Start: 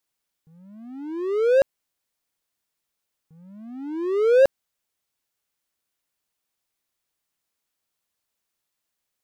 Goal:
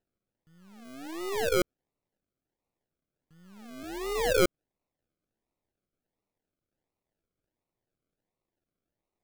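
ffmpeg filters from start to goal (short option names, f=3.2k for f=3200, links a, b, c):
-filter_complex "[0:a]aeval=exprs='if(lt(val(0),0),0.447*val(0),val(0))':c=same,asettb=1/sr,asplit=3[a][b][c];[a]atrim=end=3.834[d];[b]atrim=start=3.83:end=4.37,asetpts=PTS-STARTPTS,afade=t=in:d=0.004:c=qsin,afade=t=out:st=0.536:d=0.004:c=qsin,afreqshift=29[e];[c]atrim=start=4.366[f];[d][e]acrossfade=d=0.004:c1=hsin:c2=qsin[g];[g][f]acrossfade=d=0.004:c1=qsin:c2=hsin,acrusher=samples=38:mix=1:aa=0.000001:lfo=1:lforange=22.8:lforate=1.4,volume=-5.5dB"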